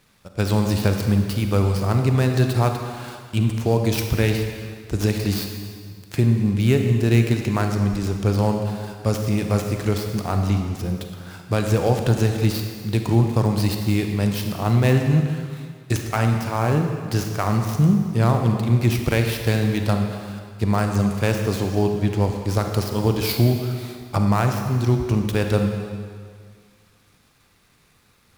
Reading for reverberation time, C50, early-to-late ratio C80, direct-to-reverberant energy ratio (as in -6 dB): 1.9 s, 4.5 dB, 6.0 dB, 4.0 dB